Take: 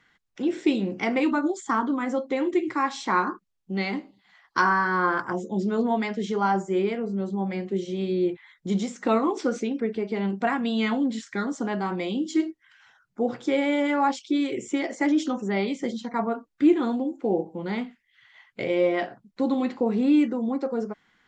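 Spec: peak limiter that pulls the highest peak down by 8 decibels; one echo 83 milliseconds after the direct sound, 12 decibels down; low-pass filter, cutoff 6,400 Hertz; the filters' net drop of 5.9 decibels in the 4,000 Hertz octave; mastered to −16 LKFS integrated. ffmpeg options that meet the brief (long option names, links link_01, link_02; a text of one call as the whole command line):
ffmpeg -i in.wav -af "lowpass=6400,equalizer=frequency=4000:width_type=o:gain=-7.5,alimiter=limit=-18dB:level=0:latency=1,aecho=1:1:83:0.251,volume=11.5dB" out.wav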